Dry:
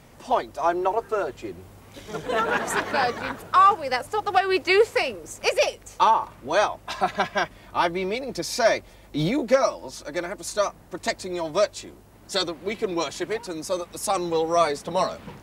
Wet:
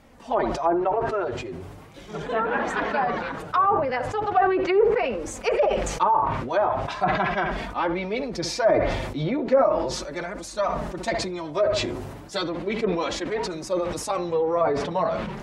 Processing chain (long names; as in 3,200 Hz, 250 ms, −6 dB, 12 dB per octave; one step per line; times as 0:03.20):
high-shelf EQ 4,500 Hz −8 dB
feedback echo with a low-pass in the loop 66 ms, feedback 33%, low-pass 2,000 Hz, level −16.5 dB
flanger 0.38 Hz, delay 3.5 ms, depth 4.9 ms, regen −18%
treble cut that deepens with the level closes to 1,000 Hz, closed at −19.5 dBFS
level that may fall only so fast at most 39 dB per second
level +2 dB